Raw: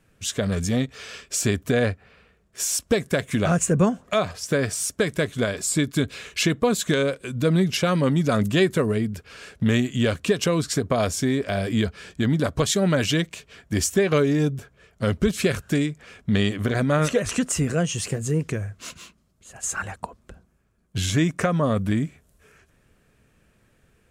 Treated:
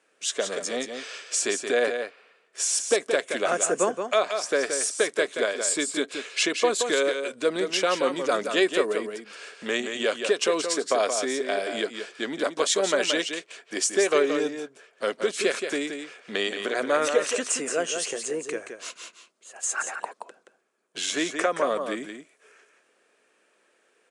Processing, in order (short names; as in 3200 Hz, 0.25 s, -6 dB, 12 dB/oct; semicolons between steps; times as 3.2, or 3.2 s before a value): HPF 360 Hz 24 dB/oct; on a send: echo 0.175 s -7 dB; on the sum: downsampling 22050 Hz